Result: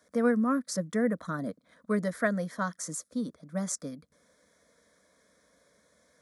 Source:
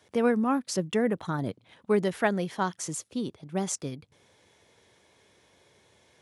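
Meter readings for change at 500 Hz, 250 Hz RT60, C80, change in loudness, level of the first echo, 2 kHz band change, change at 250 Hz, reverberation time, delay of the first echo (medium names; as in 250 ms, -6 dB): -3.5 dB, no reverb, no reverb, -2.0 dB, no echo, -1.0 dB, -0.5 dB, no reverb, no echo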